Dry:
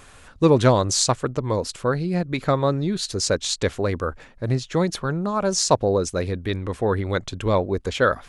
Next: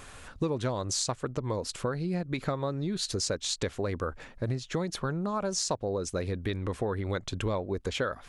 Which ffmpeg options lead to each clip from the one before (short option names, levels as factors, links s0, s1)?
-af "acompressor=threshold=0.0398:ratio=6"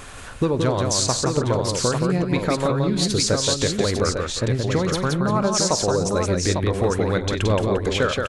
-af "aecho=1:1:48|93|173|349|851:0.141|0.112|0.631|0.188|0.531,volume=2.66"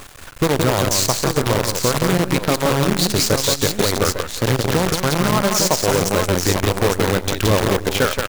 -af "acrusher=bits=4:dc=4:mix=0:aa=0.000001,volume=1.33"